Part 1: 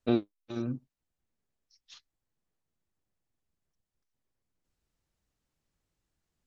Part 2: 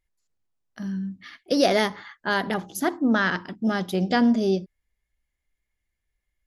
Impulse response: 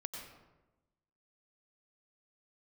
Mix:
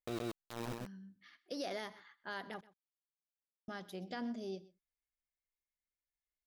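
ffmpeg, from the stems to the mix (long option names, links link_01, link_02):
-filter_complex "[0:a]equalizer=frequency=250:width_type=o:width=0.85:gain=-9,aeval=exprs='val(0)*gte(abs(val(0)),0.02)':channel_layout=same,volume=-1.5dB,asplit=2[link_01][link_02];[link_02]volume=-4dB[link_03];[1:a]lowshelf=frequency=260:gain=-8,volume=-17.5dB,asplit=3[link_04][link_05][link_06];[link_04]atrim=end=2.61,asetpts=PTS-STARTPTS,afade=type=out:start_time=2.606:duration=0.004:curve=hsin[link_07];[link_05]atrim=start=2.61:end=3.68,asetpts=PTS-STARTPTS,volume=0[link_08];[link_06]atrim=start=3.68,asetpts=PTS-STARTPTS,afade=type=in:duration=0.004:curve=hsin[link_09];[link_07][link_08][link_09]concat=n=3:v=0:a=1,asplit=2[link_10][link_11];[link_11]volume=-20.5dB[link_12];[link_03][link_12]amix=inputs=2:normalize=0,aecho=0:1:127:1[link_13];[link_01][link_10][link_13]amix=inputs=3:normalize=0,alimiter=level_in=6.5dB:limit=-24dB:level=0:latency=1:release=24,volume=-6.5dB"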